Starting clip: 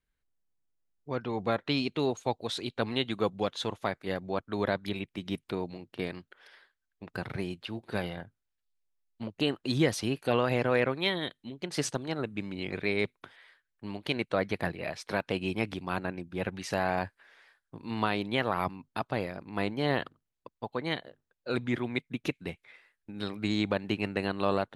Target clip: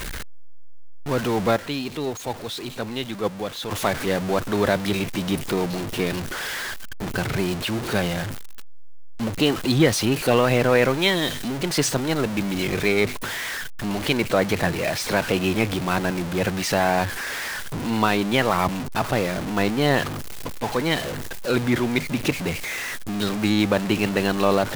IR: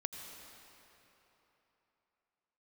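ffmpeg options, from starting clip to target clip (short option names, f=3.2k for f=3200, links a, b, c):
-filter_complex "[0:a]aeval=exprs='val(0)+0.5*0.0282*sgn(val(0))':c=same,asettb=1/sr,asplit=3[a][b][c];[a]atrim=end=1.564[d];[b]atrim=start=1.56:end=3.71,asetpts=PTS-STARTPTS,afade=t=in:d=0.004:c=qsin,afade=t=out:st=2.146:d=0.004:c=qsin,agate=range=-8dB:threshold=-23dB:ratio=16:detection=peak[e];[c]atrim=start=3.706[f];[d][e]acrossfade=d=0.004:c1=hsin:c2=qsin[g];[g][f]acrossfade=d=0.004:c1=qsin:c2=hsin,volume=7dB"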